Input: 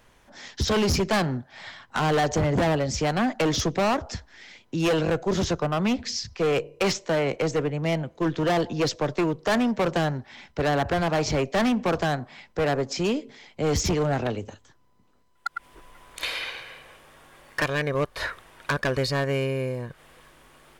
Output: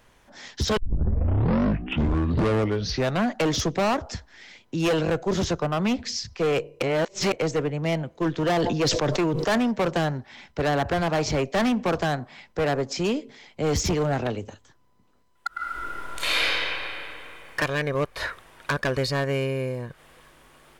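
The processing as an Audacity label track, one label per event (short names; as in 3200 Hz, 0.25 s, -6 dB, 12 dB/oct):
0.770000	0.770000	tape start 2.63 s
6.820000	7.320000	reverse
8.480000	9.580000	sustainer at most 25 dB/s
13.640000	14.130000	sample gate under -49 dBFS
15.470000	16.450000	reverb throw, RT60 3 s, DRR -9.5 dB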